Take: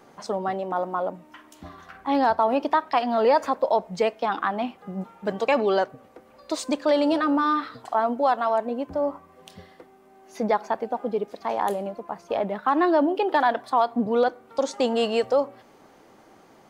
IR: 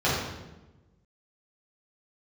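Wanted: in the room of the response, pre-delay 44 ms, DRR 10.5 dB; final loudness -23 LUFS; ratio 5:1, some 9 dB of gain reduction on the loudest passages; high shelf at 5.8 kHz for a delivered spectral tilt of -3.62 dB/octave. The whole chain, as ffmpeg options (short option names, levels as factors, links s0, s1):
-filter_complex "[0:a]highshelf=f=5800:g=6.5,acompressor=threshold=0.0501:ratio=5,asplit=2[s0][s1];[1:a]atrim=start_sample=2205,adelay=44[s2];[s1][s2]afir=irnorm=-1:irlink=0,volume=0.0473[s3];[s0][s3]amix=inputs=2:normalize=0,volume=2.37"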